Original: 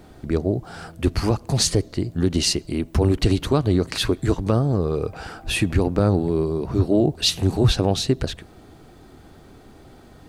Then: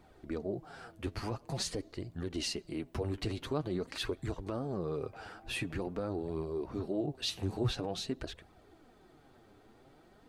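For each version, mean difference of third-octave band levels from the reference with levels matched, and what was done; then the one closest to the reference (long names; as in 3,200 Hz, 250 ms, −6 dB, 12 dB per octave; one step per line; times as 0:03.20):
2.5 dB: bass and treble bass −6 dB, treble −5 dB
brickwall limiter −13.5 dBFS, peak gain reduction 5.5 dB
flanger 0.47 Hz, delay 0.8 ms, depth 9.3 ms, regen +33%
level −7.5 dB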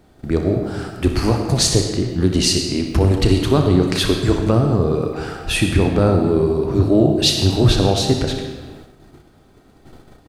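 5.0 dB: on a send: ambience of single reflections 33 ms −12 dB, 61 ms −11 dB
on the sum: comb and all-pass reverb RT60 1.4 s, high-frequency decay 0.8×, pre-delay 45 ms, DRR 5 dB
noise gate −42 dBFS, range −9 dB
level +3 dB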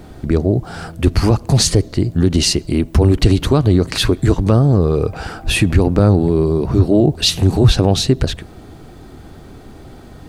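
1.0 dB: low-shelf EQ 220 Hz +4.5 dB
in parallel at +3 dB: brickwall limiter −12.5 dBFS, peak gain reduction 8 dB
on the sum: level −1 dB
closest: third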